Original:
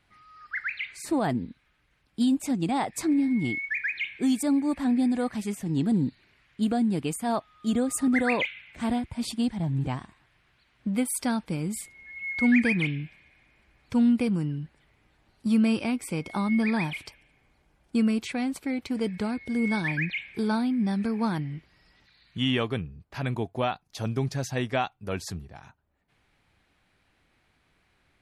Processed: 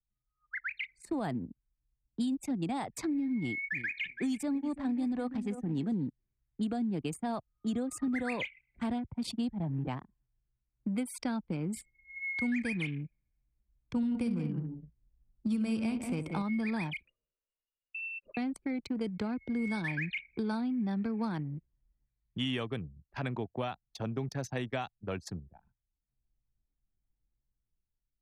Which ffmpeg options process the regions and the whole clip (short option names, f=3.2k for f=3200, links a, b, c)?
-filter_complex "[0:a]asettb=1/sr,asplit=3[a][b][c];[a]atrim=end=3.394[d];[b]atrim=start=3.39:end=5.94,asetpts=PTS-STARTPTS,afade=t=in:d=0.004:c=qsin,afade=t=out:st=2.546:d=0.004:c=qsin,highshelf=f=11k:g=-3,aecho=1:1:331|662|993:0.224|0.0582|0.0151,atrim=end_sample=112455[e];[c]atrim=start=5.936[f];[d][e]acrossfade=d=0.004:c1=hsin:c2=qsin[g];[g][f]acrossfade=d=0.004:c1=qsin:c2=hsin,asettb=1/sr,asplit=3[h][i][j];[h]atrim=end=13.964[k];[i]atrim=start=13.96:end=16.42,asetpts=PTS-STARTPTS,afade=t=in:d=0.004:c=qsin,afade=t=out:st=2.456:d=0.004:c=qsin,lowshelf=f=180:g=6.5,aecho=1:1:65|152|184|243:0.299|0.178|0.355|0.2,atrim=end_sample=108486[l];[j]atrim=start=16.416[m];[k][l]acrossfade=d=0.004:c1=hsin:c2=qsin[n];[n][m]acrossfade=d=0.004:c1=qsin:c2=hsin,asettb=1/sr,asplit=3[o][p][q];[o]atrim=end=17.054[r];[p]atrim=start=17.05:end=18.37,asetpts=PTS-STARTPTS,afade=t=in:d=0.004:c=qsin,afade=t=out:st=1.316:d=0.004:c=qsin,lowpass=f=2.5k:t=q:w=0.5098,lowpass=f=2.5k:t=q:w=0.6013,lowpass=f=2.5k:t=q:w=0.9,lowpass=f=2.5k:t=q:w=2.563,afreqshift=-2900,acompressor=threshold=-39dB:ratio=4:attack=3.2:release=140:knee=1:detection=peak,asuperstop=centerf=780:order=12:qfactor=2.7[s];[q]atrim=start=18.366[t];[r][s]acrossfade=d=0.004:c1=hsin:c2=qsin[u];[u][t]acrossfade=d=0.004:c1=qsin:c2=hsin,dynaudnorm=f=180:g=7:m=7.5dB,anlmdn=100,acrossover=split=83|170|6100[v][w][x][y];[v]acompressor=threshold=-49dB:ratio=4[z];[w]acompressor=threshold=-34dB:ratio=4[aa];[x]acompressor=threshold=-25dB:ratio=4[ab];[y]acompressor=threshold=-42dB:ratio=4[ac];[z][aa][ab][ac]amix=inputs=4:normalize=0,volume=-8.5dB"